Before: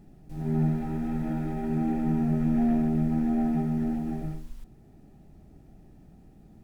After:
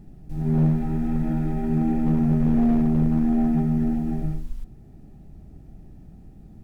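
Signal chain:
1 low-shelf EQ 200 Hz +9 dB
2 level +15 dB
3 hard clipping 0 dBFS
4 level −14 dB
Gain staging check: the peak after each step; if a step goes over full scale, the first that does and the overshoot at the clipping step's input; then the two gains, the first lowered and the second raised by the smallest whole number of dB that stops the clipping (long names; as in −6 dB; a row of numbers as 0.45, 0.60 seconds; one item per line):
−10.0, +5.0, 0.0, −14.0 dBFS
step 2, 5.0 dB
step 2 +10 dB, step 4 −9 dB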